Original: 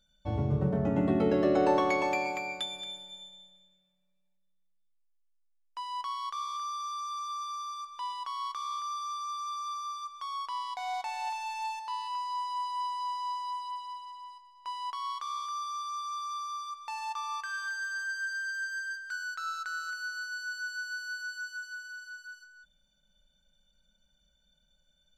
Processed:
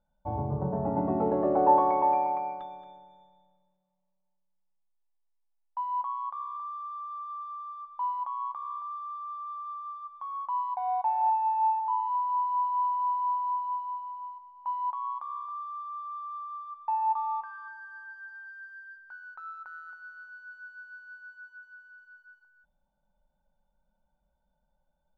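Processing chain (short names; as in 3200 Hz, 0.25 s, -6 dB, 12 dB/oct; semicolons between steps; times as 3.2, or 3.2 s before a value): synth low-pass 890 Hz, resonance Q 4.9; gain -3.5 dB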